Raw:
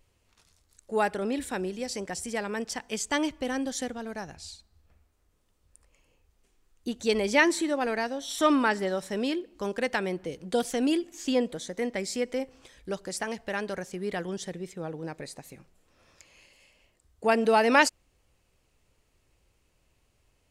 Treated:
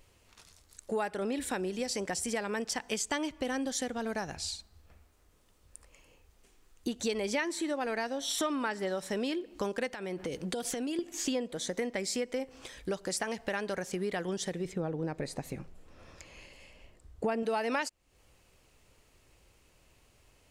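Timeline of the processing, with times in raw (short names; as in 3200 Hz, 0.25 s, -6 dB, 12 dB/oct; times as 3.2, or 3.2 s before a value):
9.89–10.99 compressor 16:1, threshold -35 dBFS
14.65–17.43 tilt -2 dB/oct
whole clip: low shelf 230 Hz -3.5 dB; compressor 5:1, threshold -38 dBFS; gain +7 dB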